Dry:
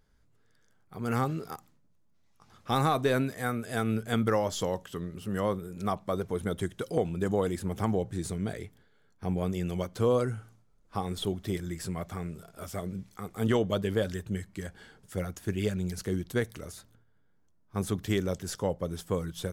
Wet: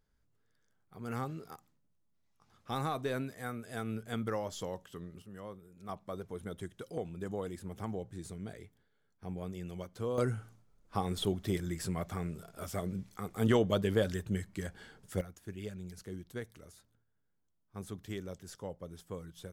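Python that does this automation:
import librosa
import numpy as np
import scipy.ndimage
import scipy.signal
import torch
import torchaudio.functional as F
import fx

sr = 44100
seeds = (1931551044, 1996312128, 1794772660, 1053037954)

y = fx.gain(x, sr, db=fx.steps((0.0, -9.0), (5.22, -17.0), (5.89, -10.5), (10.18, -1.0), (15.21, -12.5)))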